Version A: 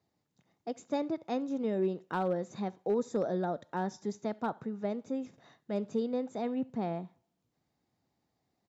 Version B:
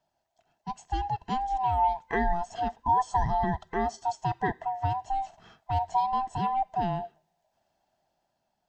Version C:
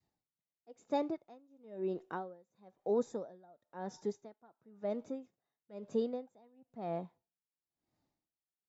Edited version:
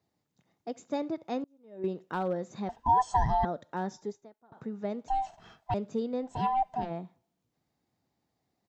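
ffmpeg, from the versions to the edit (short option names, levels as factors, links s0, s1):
-filter_complex "[2:a]asplit=2[s0][s1];[1:a]asplit=3[s2][s3][s4];[0:a]asplit=6[s5][s6][s7][s8][s9][s10];[s5]atrim=end=1.442[s11];[s0]atrim=start=1.438:end=1.842[s12];[s6]atrim=start=1.838:end=2.692[s13];[s2]atrim=start=2.688:end=3.452[s14];[s7]atrim=start=3.448:end=3.982[s15];[s1]atrim=start=3.978:end=4.522[s16];[s8]atrim=start=4.518:end=5.082[s17];[s3]atrim=start=5.078:end=5.742[s18];[s9]atrim=start=5.738:end=6.46[s19];[s4]atrim=start=6.22:end=6.93[s20];[s10]atrim=start=6.69[s21];[s11][s12]acrossfade=d=0.004:c1=hsin:c2=hsin[s22];[s22][s13]acrossfade=d=0.004:c1=hsin:c2=hsin[s23];[s23][s14]acrossfade=d=0.004:c1=hsin:c2=hsin[s24];[s24][s15]acrossfade=d=0.004:c1=hsin:c2=hsin[s25];[s25][s16]acrossfade=d=0.004:c1=hsin:c2=hsin[s26];[s26][s17]acrossfade=d=0.004:c1=hsin:c2=hsin[s27];[s27][s18]acrossfade=d=0.004:c1=hsin:c2=hsin[s28];[s28][s19]acrossfade=d=0.004:c1=hsin:c2=hsin[s29];[s29][s20]acrossfade=d=0.24:c1=tri:c2=tri[s30];[s30][s21]acrossfade=d=0.24:c1=tri:c2=tri"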